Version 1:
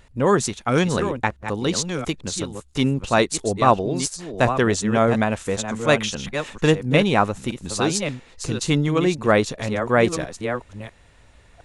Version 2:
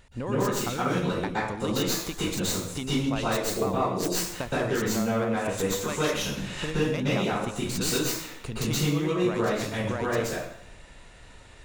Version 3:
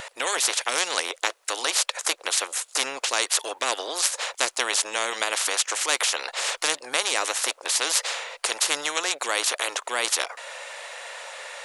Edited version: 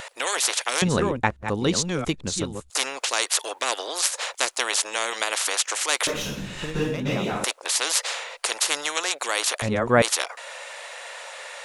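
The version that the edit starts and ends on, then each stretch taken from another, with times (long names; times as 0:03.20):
3
0:00.82–0:02.70: punch in from 1
0:06.07–0:07.44: punch in from 2
0:09.62–0:10.02: punch in from 1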